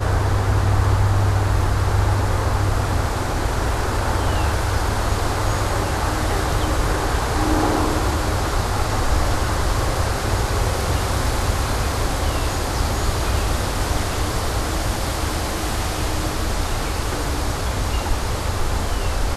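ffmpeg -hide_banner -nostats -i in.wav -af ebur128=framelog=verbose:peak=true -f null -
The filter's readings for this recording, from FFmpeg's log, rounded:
Integrated loudness:
  I:         -21.7 LUFS
  Threshold: -31.7 LUFS
Loudness range:
  LRA:         3.2 LU
  Threshold: -41.8 LUFS
  LRA low:   -23.6 LUFS
  LRA high:  -20.4 LUFS
True peak:
  Peak:       -6.3 dBFS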